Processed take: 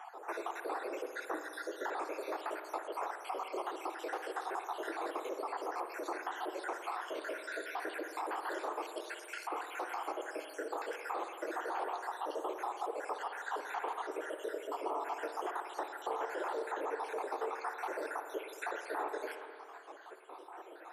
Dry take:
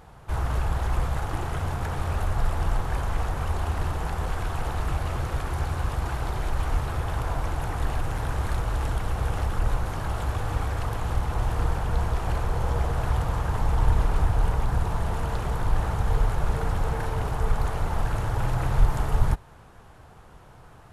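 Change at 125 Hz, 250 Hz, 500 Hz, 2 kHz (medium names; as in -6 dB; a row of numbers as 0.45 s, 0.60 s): under -40 dB, -11.0 dB, -3.5 dB, -5.0 dB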